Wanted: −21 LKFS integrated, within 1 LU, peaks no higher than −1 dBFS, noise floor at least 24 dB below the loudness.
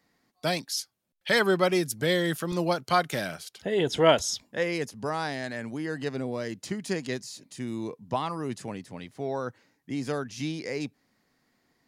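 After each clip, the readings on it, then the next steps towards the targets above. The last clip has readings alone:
number of dropouts 2; longest dropout 2.9 ms; integrated loudness −29.0 LKFS; sample peak −6.5 dBFS; target loudness −21.0 LKFS
→ repair the gap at 0:02.52/0:03.13, 2.9 ms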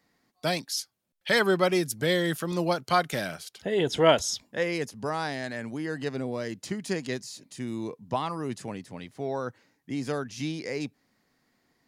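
number of dropouts 0; integrated loudness −29.0 LKFS; sample peak −6.5 dBFS; target loudness −21.0 LKFS
→ level +8 dB
brickwall limiter −1 dBFS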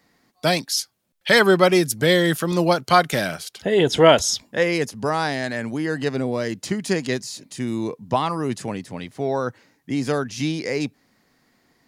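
integrated loudness −21.5 LKFS; sample peak −1.0 dBFS; background noise floor −65 dBFS

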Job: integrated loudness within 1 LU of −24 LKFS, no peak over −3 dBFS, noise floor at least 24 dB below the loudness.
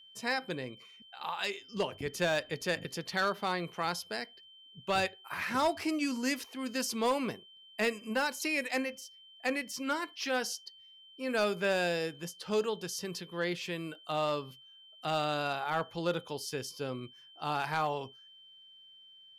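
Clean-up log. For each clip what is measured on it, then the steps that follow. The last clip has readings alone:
share of clipped samples 0.4%; peaks flattened at −22.5 dBFS; interfering tone 3,100 Hz; level of the tone −54 dBFS; integrated loudness −34.0 LKFS; sample peak −22.5 dBFS; target loudness −24.0 LKFS
→ clipped peaks rebuilt −22.5 dBFS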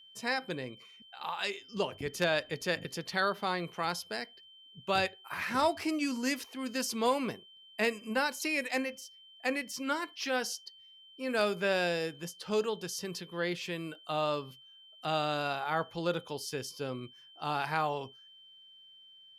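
share of clipped samples 0.0%; interfering tone 3,100 Hz; level of the tone −54 dBFS
→ notch filter 3,100 Hz, Q 30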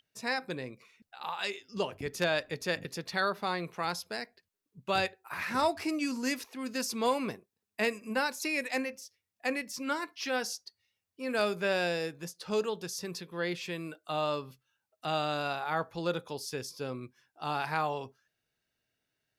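interfering tone none found; integrated loudness −33.5 LKFS; sample peak −14.0 dBFS; target loudness −24.0 LKFS
→ level +9.5 dB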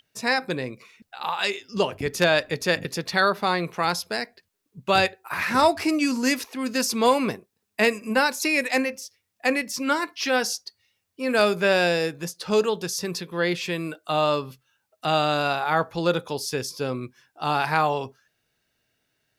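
integrated loudness −24.0 LKFS; sample peak −4.5 dBFS; background noise floor −77 dBFS

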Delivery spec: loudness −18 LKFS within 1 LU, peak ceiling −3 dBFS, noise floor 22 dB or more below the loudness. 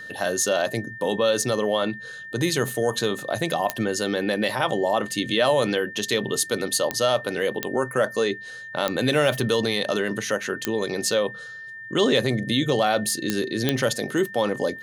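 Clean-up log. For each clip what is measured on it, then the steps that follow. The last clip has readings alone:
number of clicks 7; interfering tone 1,800 Hz; level of the tone −36 dBFS; integrated loudness −24.0 LKFS; sample peak −4.0 dBFS; target loudness −18.0 LKFS
→ click removal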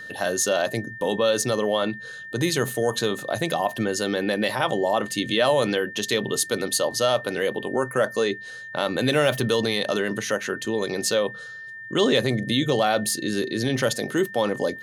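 number of clicks 0; interfering tone 1,800 Hz; level of the tone −36 dBFS
→ notch filter 1,800 Hz, Q 30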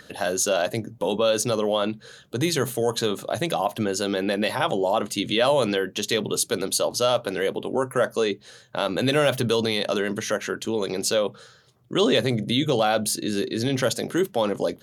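interfering tone none found; integrated loudness −24.0 LKFS; sample peak −7.0 dBFS; target loudness −18.0 LKFS
→ level +6 dB
brickwall limiter −3 dBFS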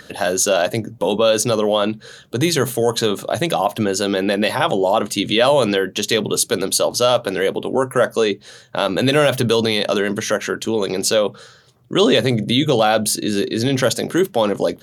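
integrated loudness −18.0 LKFS; sample peak −3.0 dBFS; background noise floor −47 dBFS

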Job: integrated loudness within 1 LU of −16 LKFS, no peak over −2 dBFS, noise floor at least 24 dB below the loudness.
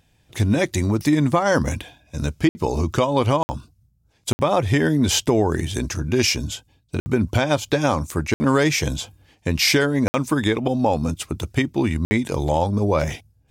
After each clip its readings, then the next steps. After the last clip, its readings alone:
number of dropouts 7; longest dropout 60 ms; integrated loudness −21.0 LKFS; sample peak −7.0 dBFS; target loudness −16.0 LKFS
→ repair the gap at 0:02.49/0:03.43/0:04.33/0:07.00/0:08.34/0:10.08/0:12.05, 60 ms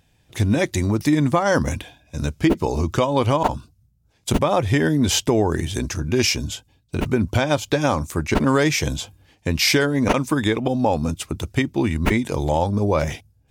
number of dropouts 0; integrated loudness −21.0 LKFS; sample peak −4.0 dBFS; target loudness −16.0 LKFS
→ level +5 dB
brickwall limiter −2 dBFS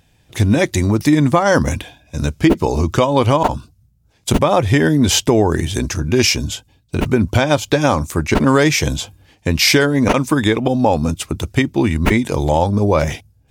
integrated loudness −16.0 LKFS; sample peak −2.0 dBFS; background noise floor −57 dBFS

